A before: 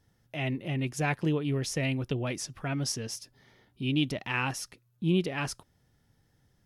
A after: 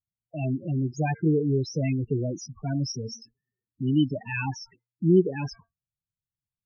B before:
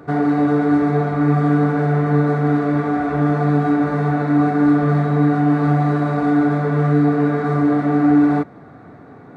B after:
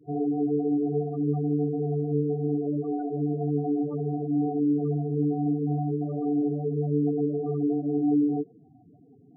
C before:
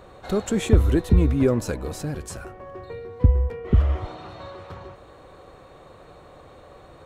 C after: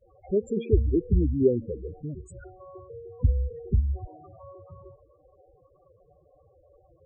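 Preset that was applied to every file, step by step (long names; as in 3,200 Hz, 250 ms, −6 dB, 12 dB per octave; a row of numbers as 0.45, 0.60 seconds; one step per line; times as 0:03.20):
gate on every frequency bin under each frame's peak −20 dB strong
hum removal 228.1 Hz, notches 10
treble cut that deepens with the level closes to 1,300 Hz, closed at −13.5 dBFS
downward expander −43 dBFS
dynamic equaliser 400 Hz, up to +7 dB, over −35 dBFS, Q 2.6
spectral peaks only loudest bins 8
loudness normalisation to −27 LKFS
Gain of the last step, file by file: +5.0, −11.5, −5.5 decibels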